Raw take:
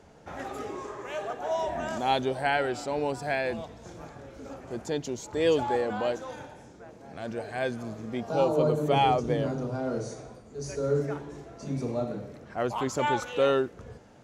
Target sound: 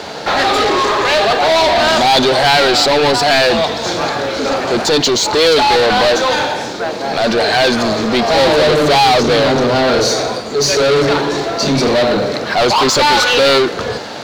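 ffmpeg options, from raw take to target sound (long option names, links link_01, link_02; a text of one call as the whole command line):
ffmpeg -i in.wav -filter_complex "[0:a]asplit=2[link_01][link_02];[link_02]highpass=frequency=720:poles=1,volume=33dB,asoftclip=type=tanh:threshold=-12.5dB[link_03];[link_01][link_03]amix=inputs=2:normalize=0,lowpass=frequency=3000:poles=1,volume=-6dB,aeval=exprs='sgn(val(0))*max(abs(val(0))-0.00422,0)':channel_layout=same,equalizer=frequency=4200:width=1.9:gain=14,volume=7.5dB" out.wav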